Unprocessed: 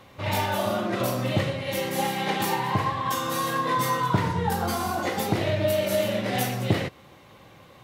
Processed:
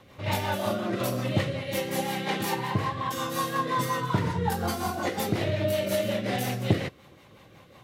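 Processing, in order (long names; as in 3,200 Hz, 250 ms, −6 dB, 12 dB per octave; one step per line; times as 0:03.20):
rotating-speaker cabinet horn 5.5 Hz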